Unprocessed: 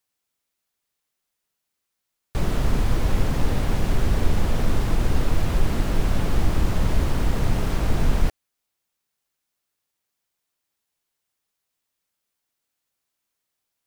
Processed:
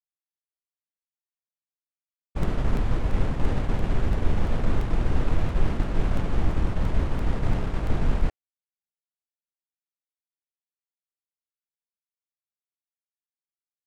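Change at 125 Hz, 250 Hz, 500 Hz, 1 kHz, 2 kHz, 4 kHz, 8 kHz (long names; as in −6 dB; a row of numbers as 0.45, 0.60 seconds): −2.5, −3.0, −3.0, −3.5, −4.5, −8.0, −13.0 decibels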